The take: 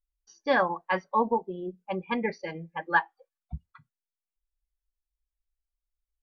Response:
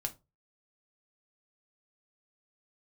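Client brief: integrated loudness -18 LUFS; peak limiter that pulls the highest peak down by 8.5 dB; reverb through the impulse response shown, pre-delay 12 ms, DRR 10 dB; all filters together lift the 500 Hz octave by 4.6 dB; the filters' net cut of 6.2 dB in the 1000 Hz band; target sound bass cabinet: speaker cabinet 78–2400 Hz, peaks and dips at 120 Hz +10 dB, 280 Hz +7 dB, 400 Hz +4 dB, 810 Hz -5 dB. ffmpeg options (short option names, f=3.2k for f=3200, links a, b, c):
-filter_complex "[0:a]equalizer=f=500:t=o:g=5,equalizer=f=1k:t=o:g=-6,alimiter=limit=-19dB:level=0:latency=1,asplit=2[a][b];[1:a]atrim=start_sample=2205,adelay=12[c];[b][c]afir=irnorm=-1:irlink=0,volume=-10.5dB[d];[a][d]amix=inputs=2:normalize=0,highpass=f=78:w=0.5412,highpass=f=78:w=1.3066,equalizer=f=120:t=q:w=4:g=10,equalizer=f=280:t=q:w=4:g=7,equalizer=f=400:t=q:w=4:g=4,equalizer=f=810:t=q:w=4:g=-5,lowpass=f=2.4k:w=0.5412,lowpass=f=2.4k:w=1.3066,volume=12.5dB"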